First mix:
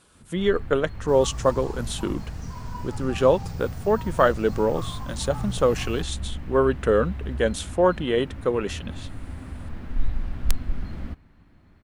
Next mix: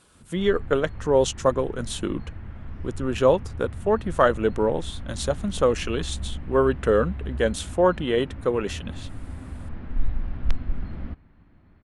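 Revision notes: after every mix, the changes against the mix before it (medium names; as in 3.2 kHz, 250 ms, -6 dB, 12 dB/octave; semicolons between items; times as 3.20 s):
first sound: add distance through air 240 m; second sound: muted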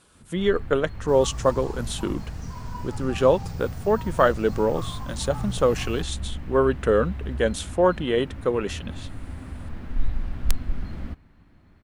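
first sound: remove distance through air 240 m; second sound: unmuted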